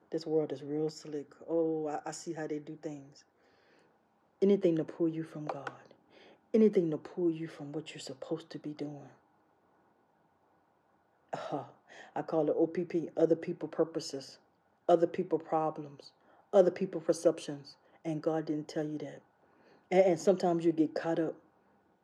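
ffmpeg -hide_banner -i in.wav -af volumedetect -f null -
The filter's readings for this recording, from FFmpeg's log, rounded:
mean_volume: -33.8 dB
max_volume: -10.4 dB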